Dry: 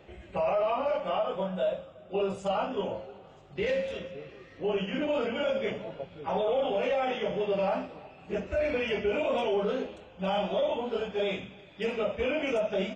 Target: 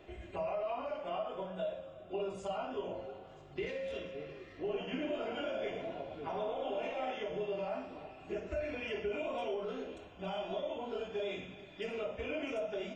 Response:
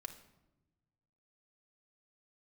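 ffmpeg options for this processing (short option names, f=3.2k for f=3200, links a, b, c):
-filter_complex "[0:a]acompressor=threshold=-36dB:ratio=3,asettb=1/sr,asplit=3[a][b][c];[a]atrim=end=4.544[d];[b]atrim=start=4.54:end=7.11,asetpts=PTS-STARTPTS,afade=t=in:d=0.004:c=qsin,afade=t=out:st=2.566:d=0.004:c=qsin,asplit=5[e][f][g][h][i];[f]adelay=109,afreqshift=70,volume=-7dB[j];[g]adelay=218,afreqshift=140,volume=-15.6dB[k];[h]adelay=327,afreqshift=210,volume=-24.3dB[l];[i]adelay=436,afreqshift=280,volume=-32.9dB[m];[e][j][k][l][m]amix=inputs=5:normalize=0,atrim=end_sample=113337[n];[c]atrim=start=7.106[o];[d][n]acrossfade=d=0.004:c1=hsin:c2=qsin[p];[p][o]acrossfade=d=0.004:c1=qsin:c2=hsin[q];[1:a]atrim=start_sample=2205,afade=t=out:st=0.19:d=0.01,atrim=end_sample=8820[r];[q][r]afir=irnorm=-1:irlink=0,volume=2.5dB"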